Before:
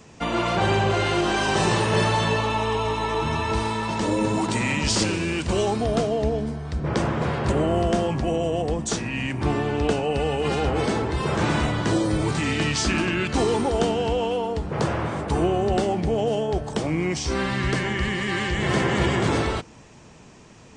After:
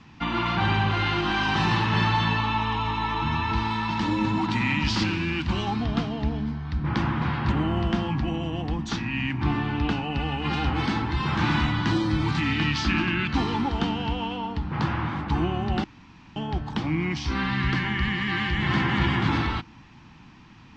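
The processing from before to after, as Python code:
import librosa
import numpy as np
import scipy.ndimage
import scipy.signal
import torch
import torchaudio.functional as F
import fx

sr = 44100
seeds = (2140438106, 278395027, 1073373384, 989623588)

y = fx.high_shelf(x, sr, hz=5600.0, db=5.5, at=(3.7, 4.31))
y = fx.high_shelf(y, sr, hz=5500.0, db=7.5, at=(10.53, 12.4))
y = fx.edit(y, sr, fx.room_tone_fill(start_s=15.84, length_s=0.52), tone=tone)
y = scipy.signal.sosfilt(scipy.signal.butter(4, 4400.0, 'lowpass', fs=sr, output='sos'), y)
y = fx.band_shelf(y, sr, hz=510.0, db=-15.0, octaves=1.0)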